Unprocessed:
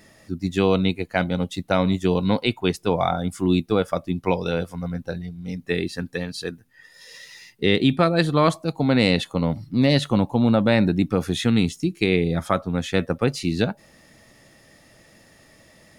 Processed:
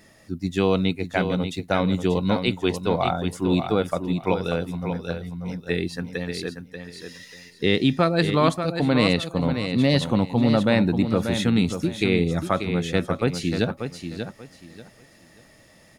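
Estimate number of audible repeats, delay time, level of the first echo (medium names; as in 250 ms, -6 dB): 3, 587 ms, -8.0 dB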